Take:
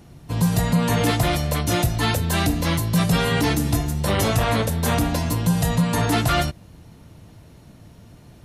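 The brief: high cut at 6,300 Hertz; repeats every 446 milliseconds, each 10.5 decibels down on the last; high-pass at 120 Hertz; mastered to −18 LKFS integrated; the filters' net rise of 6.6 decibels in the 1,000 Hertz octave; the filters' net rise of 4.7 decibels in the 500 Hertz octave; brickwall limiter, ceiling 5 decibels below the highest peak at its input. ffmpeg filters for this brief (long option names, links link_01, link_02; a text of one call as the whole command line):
ffmpeg -i in.wav -af "highpass=120,lowpass=6300,equalizer=frequency=500:width_type=o:gain=3.5,equalizer=frequency=1000:width_type=o:gain=7.5,alimiter=limit=-11dB:level=0:latency=1,aecho=1:1:446|892|1338:0.299|0.0896|0.0269,volume=3dB" out.wav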